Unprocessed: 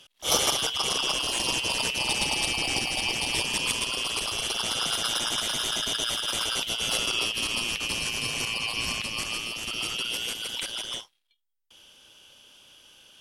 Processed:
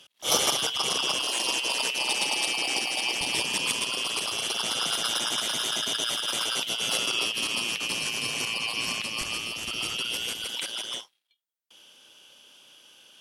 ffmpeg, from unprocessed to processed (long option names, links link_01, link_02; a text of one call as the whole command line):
ffmpeg -i in.wav -af "asetnsamples=nb_out_samples=441:pad=0,asendcmd='1.22 highpass f 310;3.21 highpass f 150;9.21 highpass f 48;10.44 highpass f 180',highpass=120" out.wav